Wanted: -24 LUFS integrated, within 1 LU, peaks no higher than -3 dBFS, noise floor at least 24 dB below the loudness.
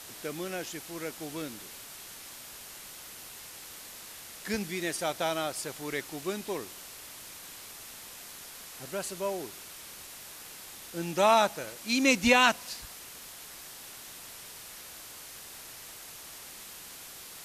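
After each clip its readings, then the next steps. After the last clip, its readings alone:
noise floor -47 dBFS; noise floor target -55 dBFS; loudness -31.0 LUFS; peak level -7.0 dBFS; loudness target -24.0 LUFS
-> noise print and reduce 8 dB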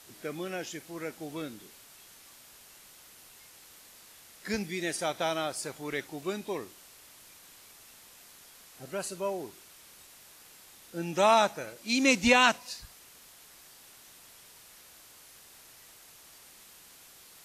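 noise floor -55 dBFS; loudness -29.5 LUFS; peak level -7.0 dBFS; loudness target -24.0 LUFS
-> trim +5.5 dB; peak limiter -3 dBFS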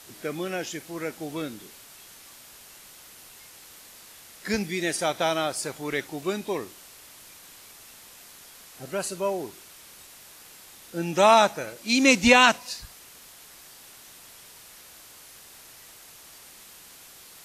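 loudness -24.5 LUFS; peak level -3.0 dBFS; noise floor -49 dBFS

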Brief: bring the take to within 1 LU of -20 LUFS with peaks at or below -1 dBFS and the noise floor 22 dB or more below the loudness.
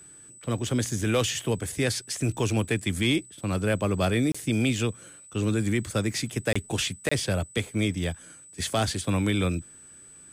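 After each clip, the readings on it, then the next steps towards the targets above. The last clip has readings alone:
dropouts 3; longest dropout 25 ms; steady tone 8 kHz; tone level -47 dBFS; loudness -27.5 LUFS; peak level -14.5 dBFS; loudness target -20.0 LUFS
-> interpolate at 4.32/6.53/7.09 s, 25 ms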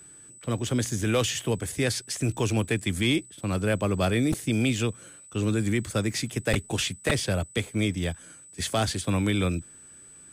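dropouts 0; steady tone 8 kHz; tone level -47 dBFS
-> band-stop 8 kHz, Q 30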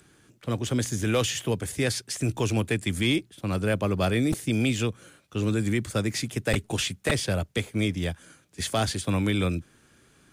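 steady tone not found; loudness -27.5 LUFS; peak level -9.5 dBFS; loudness target -20.0 LUFS
-> trim +7.5 dB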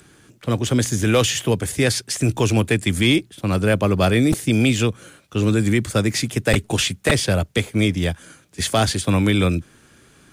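loudness -20.0 LUFS; peak level -2.0 dBFS; noise floor -53 dBFS

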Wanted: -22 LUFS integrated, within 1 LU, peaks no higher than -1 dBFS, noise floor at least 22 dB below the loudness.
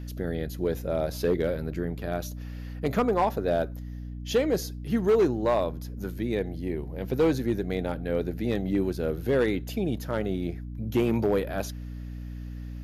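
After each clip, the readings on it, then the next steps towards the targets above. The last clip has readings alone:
clipped samples 0.8%; clipping level -16.5 dBFS; hum 60 Hz; highest harmonic 300 Hz; hum level -35 dBFS; loudness -28.0 LUFS; peak level -16.5 dBFS; loudness target -22.0 LUFS
-> clip repair -16.5 dBFS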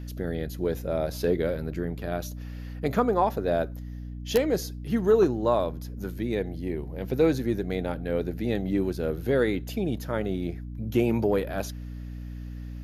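clipped samples 0.0%; hum 60 Hz; highest harmonic 300 Hz; hum level -34 dBFS
-> hum notches 60/120/180/240/300 Hz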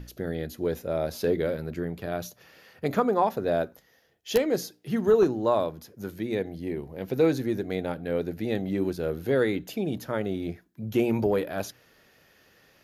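hum not found; loudness -28.0 LUFS; peak level -7.5 dBFS; loudness target -22.0 LUFS
-> trim +6 dB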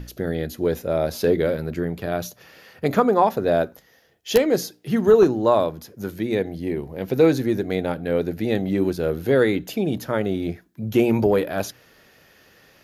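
loudness -22.0 LUFS; peak level -1.5 dBFS; noise floor -57 dBFS

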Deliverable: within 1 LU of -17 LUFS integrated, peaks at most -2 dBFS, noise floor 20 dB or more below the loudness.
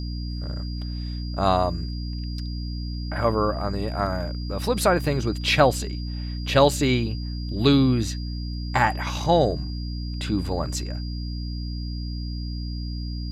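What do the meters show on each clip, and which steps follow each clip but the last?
hum 60 Hz; highest harmonic 300 Hz; hum level -27 dBFS; steady tone 4.8 kHz; tone level -41 dBFS; loudness -25.0 LUFS; peak level -4.5 dBFS; loudness target -17.0 LUFS
-> hum notches 60/120/180/240/300 Hz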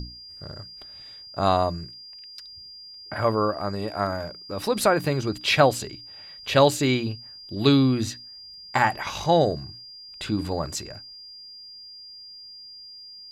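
hum not found; steady tone 4.8 kHz; tone level -41 dBFS
-> band-stop 4.8 kHz, Q 30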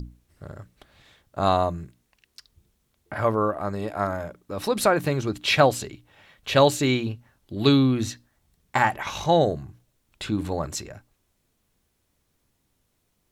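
steady tone not found; loudness -24.0 LUFS; peak level -4.5 dBFS; loudness target -17.0 LUFS
-> trim +7 dB; peak limiter -2 dBFS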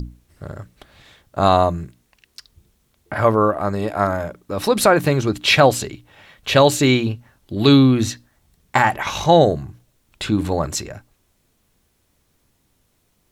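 loudness -17.5 LUFS; peak level -2.0 dBFS; noise floor -65 dBFS

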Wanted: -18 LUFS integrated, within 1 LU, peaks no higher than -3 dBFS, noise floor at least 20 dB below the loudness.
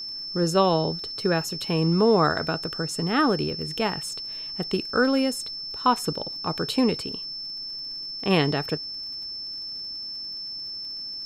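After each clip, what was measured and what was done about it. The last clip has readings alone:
tick rate 45 per s; steady tone 5.3 kHz; tone level -32 dBFS; loudness -25.5 LUFS; peak level -7.5 dBFS; loudness target -18.0 LUFS
-> de-click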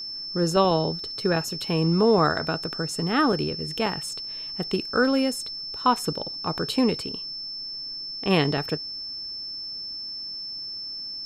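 tick rate 0 per s; steady tone 5.3 kHz; tone level -32 dBFS
-> band-stop 5.3 kHz, Q 30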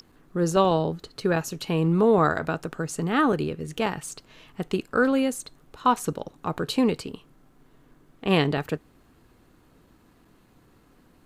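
steady tone not found; loudness -25.0 LUFS; peak level -8.0 dBFS; loudness target -18.0 LUFS
-> trim +7 dB; peak limiter -3 dBFS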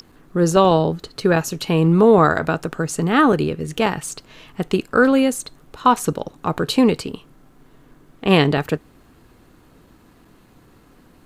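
loudness -18.5 LUFS; peak level -3.0 dBFS; noise floor -52 dBFS

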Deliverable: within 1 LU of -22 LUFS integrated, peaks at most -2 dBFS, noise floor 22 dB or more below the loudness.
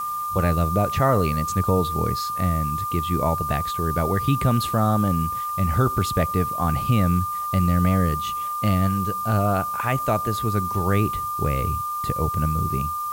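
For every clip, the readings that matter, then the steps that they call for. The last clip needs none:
steady tone 1.2 kHz; tone level -25 dBFS; noise floor -28 dBFS; noise floor target -45 dBFS; loudness -22.5 LUFS; peak level -8.0 dBFS; loudness target -22.0 LUFS
-> band-stop 1.2 kHz, Q 30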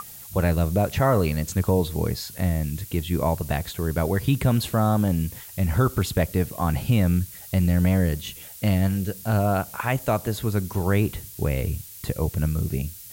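steady tone not found; noise floor -42 dBFS; noise floor target -47 dBFS
-> noise print and reduce 6 dB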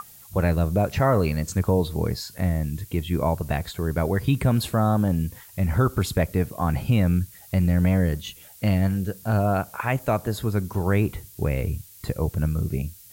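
noise floor -48 dBFS; loudness -24.5 LUFS; peak level -9.5 dBFS; loudness target -22.0 LUFS
-> trim +2.5 dB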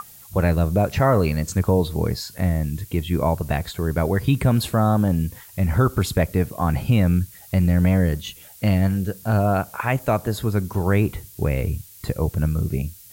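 loudness -22.0 LUFS; peak level -7.0 dBFS; noise floor -45 dBFS

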